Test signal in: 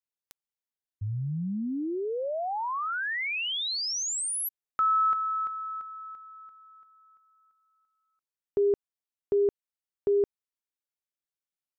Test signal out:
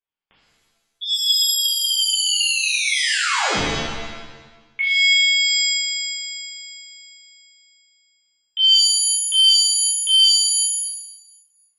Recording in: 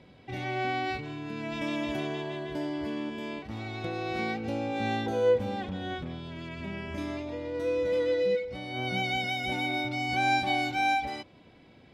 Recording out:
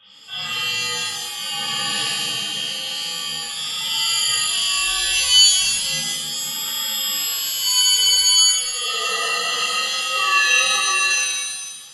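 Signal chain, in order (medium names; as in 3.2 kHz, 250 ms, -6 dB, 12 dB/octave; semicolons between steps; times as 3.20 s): frequency inversion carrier 3.5 kHz; pitch-shifted reverb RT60 1.1 s, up +7 st, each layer -2 dB, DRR -8 dB; trim -1 dB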